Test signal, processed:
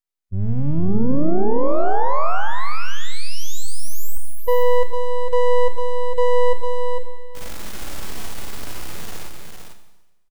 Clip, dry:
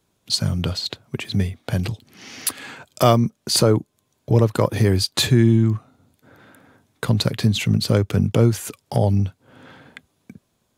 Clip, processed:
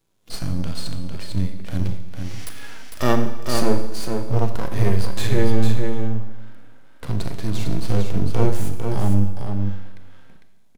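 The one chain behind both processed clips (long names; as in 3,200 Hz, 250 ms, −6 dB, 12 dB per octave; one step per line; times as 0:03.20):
half-wave rectification
harmonic and percussive parts rebalanced percussive −15 dB
single-tap delay 452 ms −5.5 dB
four-comb reverb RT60 1.1 s, combs from 28 ms, DRR 8 dB
level +4 dB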